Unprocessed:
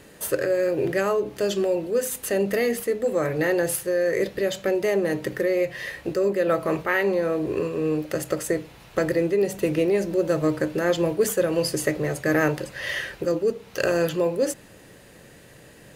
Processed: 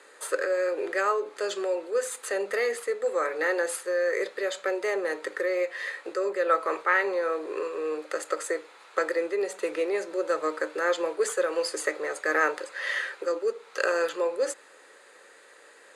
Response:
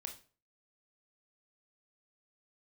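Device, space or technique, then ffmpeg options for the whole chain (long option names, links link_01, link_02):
phone speaker on a table: -af "highpass=frequency=460:width=0.5412,highpass=frequency=460:width=1.3066,equalizer=frequency=660:width_type=q:width=4:gain=-8,equalizer=frequency=1300:width_type=q:width=4:gain=6,equalizer=frequency=2900:width_type=q:width=4:gain=-7,equalizer=frequency=5600:width_type=q:width=4:gain=-9,lowpass=frequency=8900:width=0.5412,lowpass=frequency=8900:width=1.3066"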